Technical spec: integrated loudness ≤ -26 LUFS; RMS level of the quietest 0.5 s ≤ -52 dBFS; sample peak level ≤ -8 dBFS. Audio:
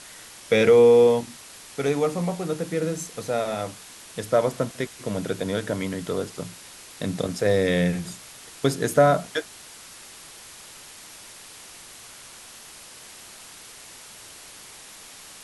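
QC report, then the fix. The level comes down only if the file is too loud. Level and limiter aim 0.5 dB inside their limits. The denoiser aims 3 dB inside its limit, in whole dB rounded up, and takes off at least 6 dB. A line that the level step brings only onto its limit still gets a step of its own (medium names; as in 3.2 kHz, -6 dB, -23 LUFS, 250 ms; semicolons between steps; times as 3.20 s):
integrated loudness -23.0 LUFS: fail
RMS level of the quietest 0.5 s -45 dBFS: fail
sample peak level -5.0 dBFS: fail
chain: noise reduction 7 dB, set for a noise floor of -45 dBFS; trim -3.5 dB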